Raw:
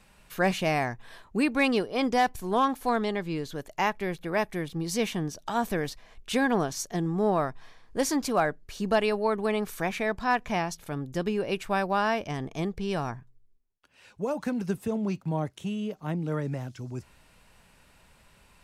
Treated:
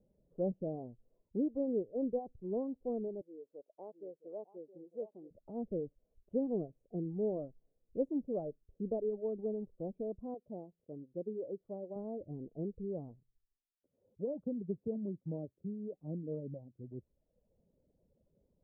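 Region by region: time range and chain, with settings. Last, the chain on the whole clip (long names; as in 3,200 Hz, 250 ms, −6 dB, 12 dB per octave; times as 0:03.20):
0:03.21–0:05.31: high-pass filter 590 Hz + single-tap delay 666 ms −10 dB
0:10.34–0:11.96: high-pass filter 320 Hz 6 dB per octave + high-frequency loss of the air 370 metres
whole clip: elliptic low-pass filter 540 Hz, stop band 70 dB; reverb reduction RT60 0.83 s; spectral tilt +2.5 dB per octave; level −2.5 dB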